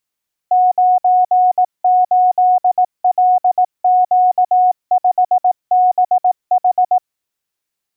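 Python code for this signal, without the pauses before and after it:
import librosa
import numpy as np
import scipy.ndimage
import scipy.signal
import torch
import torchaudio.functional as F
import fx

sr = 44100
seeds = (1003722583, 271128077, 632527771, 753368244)

y = fx.morse(sr, text='98LQ5BH', wpm=18, hz=732.0, level_db=-8.0)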